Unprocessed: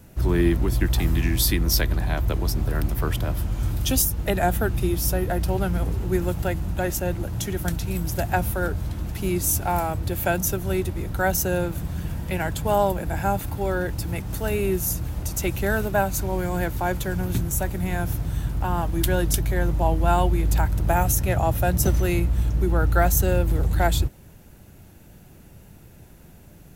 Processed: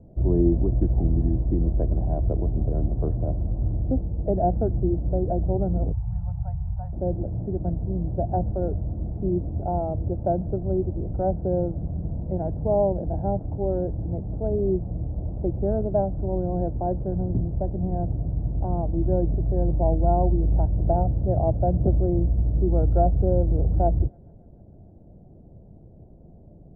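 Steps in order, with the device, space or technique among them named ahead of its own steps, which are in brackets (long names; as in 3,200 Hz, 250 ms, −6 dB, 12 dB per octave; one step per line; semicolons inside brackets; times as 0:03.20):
0:05.92–0:06.93: Chebyshev band-stop filter 140–850 Hz, order 3
under water (low-pass filter 600 Hz 24 dB per octave; parametric band 680 Hz +7 dB 0.43 octaves)
delay with a high-pass on its return 146 ms, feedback 76%, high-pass 4,600 Hz, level −4.5 dB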